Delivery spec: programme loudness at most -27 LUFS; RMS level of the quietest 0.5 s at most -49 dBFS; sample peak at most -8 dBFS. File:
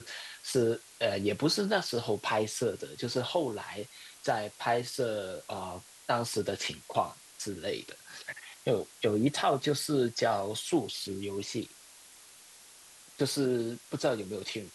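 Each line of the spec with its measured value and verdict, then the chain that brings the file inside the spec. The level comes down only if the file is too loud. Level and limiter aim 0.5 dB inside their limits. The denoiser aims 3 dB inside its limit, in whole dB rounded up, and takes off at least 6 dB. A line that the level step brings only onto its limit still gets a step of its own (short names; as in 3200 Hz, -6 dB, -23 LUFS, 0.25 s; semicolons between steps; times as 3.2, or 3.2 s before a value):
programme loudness -32.0 LUFS: OK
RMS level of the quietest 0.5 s -54 dBFS: OK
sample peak -14.0 dBFS: OK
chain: none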